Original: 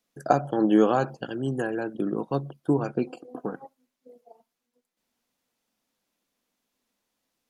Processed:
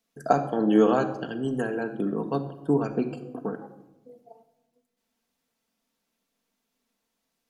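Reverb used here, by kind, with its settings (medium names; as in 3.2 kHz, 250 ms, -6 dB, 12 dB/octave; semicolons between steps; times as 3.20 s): simulated room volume 3900 m³, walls furnished, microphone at 1.6 m; trim -1 dB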